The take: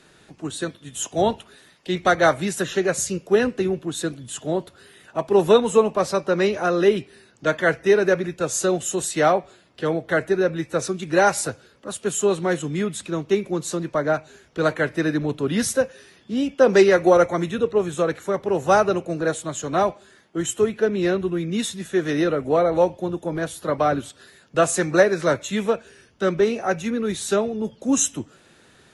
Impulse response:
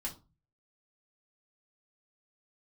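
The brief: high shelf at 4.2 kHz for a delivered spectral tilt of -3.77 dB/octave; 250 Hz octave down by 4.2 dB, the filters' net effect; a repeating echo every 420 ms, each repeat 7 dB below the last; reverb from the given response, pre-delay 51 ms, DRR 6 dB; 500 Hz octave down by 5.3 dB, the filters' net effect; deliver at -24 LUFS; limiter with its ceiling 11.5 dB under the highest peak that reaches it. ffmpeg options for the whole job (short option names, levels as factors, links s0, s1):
-filter_complex "[0:a]equalizer=f=250:t=o:g=-4,equalizer=f=500:t=o:g=-5.5,highshelf=f=4200:g=4,alimiter=limit=0.141:level=0:latency=1,aecho=1:1:420|840|1260|1680|2100:0.447|0.201|0.0905|0.0407|0.0183,asplit=2[s0][s1];[1:a]atrim=start_sample=2205,adelay=51[s2];[s1][s2]afir=irnorm=-1:irlink=0,volume=0.501[s3];[s0][s3]amix=inputs=2:normalize=0,volume=1.26"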